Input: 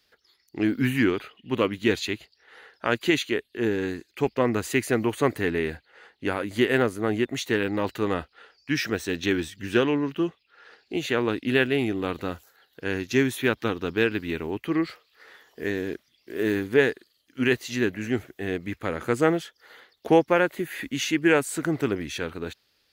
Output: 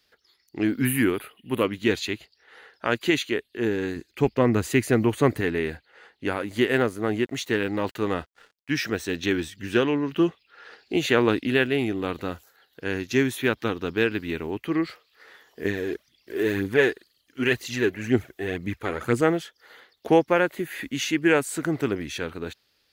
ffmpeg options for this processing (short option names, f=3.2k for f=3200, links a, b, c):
-filter_complex "[0:a]asettb=1/sr,asplit=3[a][b][c];[a]atrim=end=0.854[d];[b]atrim=start=0.85:end=1.64,asetpts=PTS-STARTPTS,afade=t=in:d=0.004:c=qsin,afade=t=out:st=0.786:d=0.004:c=qsin,highshelf=f=7.9k:t=q:w=3:g=11[e];[c]atrim=start=1.636[f];[d][e]acrossfade=d=0.004:c1=hsin:c2=qsin[g];[g][f]acrossfade=d=0.004:c1=qsin:c2=hsin,asettb=1/sr,asplit=3[h][i][j];[h]atrim=end=3.964[k];[i]atrim=start=3.96:end=5.41,asetpts=PTS-STARTPTS,afade=t=in:d=0.004:c=qsin,afade=t=out:st=1.446:d=0.004:c=qsin,lowshelf=f=250:g=8[l];[j]atrim=start=5.406[m];[k][l]acrossfade=d=0.004:c1=hsin:c2=qsin[n];[n][m]acrossfade=d=0.004:c1=qsin:c2=hsin,asettb=1/sr,asplit=3[o][p][q];[o]atrim=end=6.404[r];[p]atrim=start=6.4:end=8.86,asetpts=PTS-STARTPTS,afade=t=in:d=0.004:c=qsin,afade=t=out:st=2.456:d=0.004:c=qsin,aeval=exprs='sgn(val(0))*max(abs(val(0))-0.00188,0)':c=same[s];[q]atrim=start=8.856[t];[r][s]acrossfade=d=0.004:c1=hsin:c2=qsin[u];[u][t]acrossfade=d=0.004:c1=qsin:c2=hsin,asettb=1/sr,asplit=3[v][w][x];[v]atrim=end=15.654[y];[w]atrim=start=15.65:end=19.21,asetpts=PTS-STARTPTS,afade=t=in:d=0.004:c=qsin,afade=t=out:st=3.556:d=0.004:c=qsin,aphaser=in_gain=1:out_gain=1:delay=3:decay=0.5:speed=2:type=triangular[z];[x]atrim=start=19.206[aa];[y][z]acrossfade=d=0.004:c1=hsin:c2=qsin[ab];[ab][aa]acrossfade=d=0.004:c1=qsin:c2=hsin,asplit=3[ac][ad][ae];[ac]atrim=end=10.122[af];[ad]atrim=start=10.118:end=11.472,asetpts=PTS-STARTPTS,volume=4.5dB[ag];[ae]atrim=start=11.468[ah];[af][ag]acrossfade=d=0.004:c1=hsin:c2=hsin[ai];[ai][ah]acrossfade=d=0.004:c1=hsin:c2=hsin"